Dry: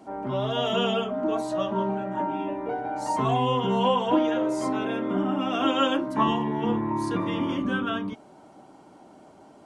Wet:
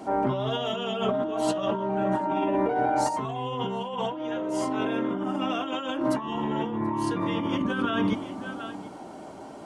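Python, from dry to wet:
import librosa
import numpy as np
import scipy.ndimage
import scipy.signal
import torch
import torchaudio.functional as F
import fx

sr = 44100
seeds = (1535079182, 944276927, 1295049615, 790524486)

p1 = fx.hum_notches(x, sr, base_hz=50, count=6)
p2 = p1 + fx.echo_single(p1, sr, ms=732, db=-18.0, dry=0)
p3 = fx.over_compress(p2, sr, threshold_db=-32.0, ratio=-1.0)
y = p3 * librosa.db_to_amplitude(4.0)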